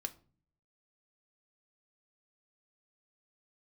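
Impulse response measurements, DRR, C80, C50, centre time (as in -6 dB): 7.0 dB, 23.5 dB, 18.5 dB, 4 ms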